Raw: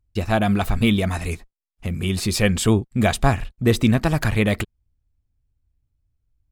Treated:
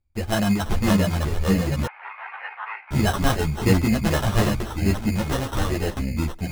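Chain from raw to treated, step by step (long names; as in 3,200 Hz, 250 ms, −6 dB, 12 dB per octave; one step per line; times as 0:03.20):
delay with pitch and tempo change per echo 497 ms, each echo −3 semitones, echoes 3
decimation without filtering 19×
0:01.86–0:02.91: elliptic band-pass filter 850–2,400 Hz, stop band 60 dB
string-ensemble chorus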